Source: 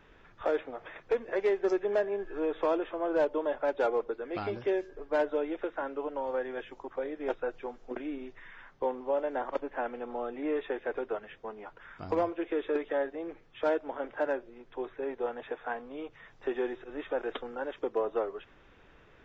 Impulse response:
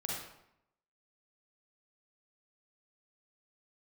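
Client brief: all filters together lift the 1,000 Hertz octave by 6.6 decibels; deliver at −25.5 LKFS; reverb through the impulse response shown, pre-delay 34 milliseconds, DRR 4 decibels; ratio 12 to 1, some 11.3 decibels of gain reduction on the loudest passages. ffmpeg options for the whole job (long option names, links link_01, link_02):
-filter_complex "[0:a]equalizer=frequency=1000:width_type=o:gain=8.5,acompressor=threshold=-32dB:ratio=12,asplit=2[link_01][link_02];[1:a]atrim=start_sample=2205,adelay=34[link_03];[link_02][link_03]afir=irnorm=-1:irlink=0,volume=-6.5dB[link_04];[link_01][link_04]amix=inputs=2:normalize=0,volume=11.5dB"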